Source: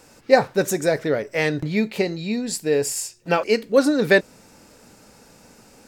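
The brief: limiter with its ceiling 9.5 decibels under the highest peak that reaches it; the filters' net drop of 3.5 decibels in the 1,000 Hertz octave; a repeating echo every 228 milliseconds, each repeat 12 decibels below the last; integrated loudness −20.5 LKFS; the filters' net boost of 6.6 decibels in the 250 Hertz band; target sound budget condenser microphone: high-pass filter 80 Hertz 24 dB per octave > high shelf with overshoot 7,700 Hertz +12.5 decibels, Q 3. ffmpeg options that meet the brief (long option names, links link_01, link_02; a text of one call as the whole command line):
ffmpeg -i in.wav -af "equalizer=frequency=250:width_type=o:gain=8.5,equalizer=frequency=1000:width_type=o:gain=-6,alimiter=limit=-11dB:level=0:latency=1,highpass=frequency=80:width=0.5412,highpass=frequency=80:width=1.3066,highshelf=frequency=7700:width_type=q:width=3:gain=12.5,aecho=1:1:228|456|684:0.251|0.0628|0.0157,volume=-1.5dB" out.wav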